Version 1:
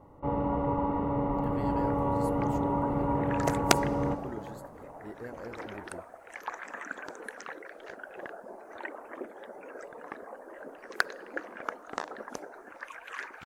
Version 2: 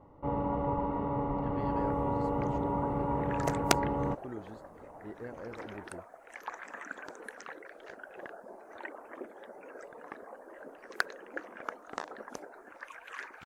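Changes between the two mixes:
speech: add high-frequency loss of the air 150 metres
second sound −3.0 dB
reverb: off

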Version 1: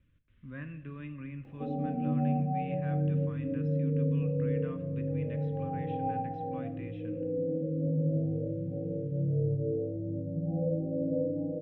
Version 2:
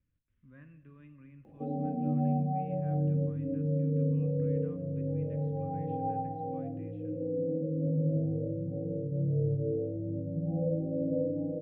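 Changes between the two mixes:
speech −11.5 dB
master: add parametric band 4,500 Hz −5.5 dB 2 octaves

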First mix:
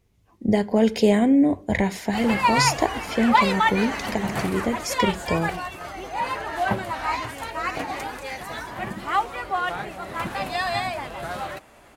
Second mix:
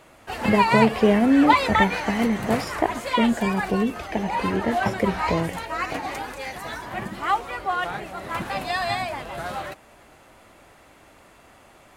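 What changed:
speech: add Savitzky-Golay smoothing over 25 samples
background: entry −1.85 s

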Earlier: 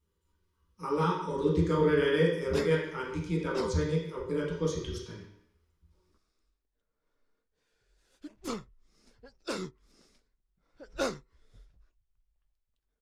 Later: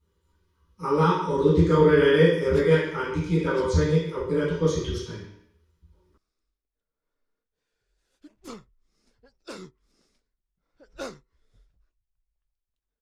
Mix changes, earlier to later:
speech: send +8.0 dB
background −4.5 dB

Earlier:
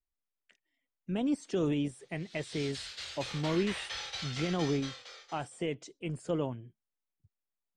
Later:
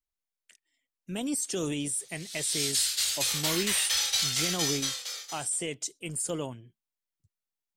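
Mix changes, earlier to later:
speech −3.0 dB
master: remove head-to-tape spacing loss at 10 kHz 31 dB

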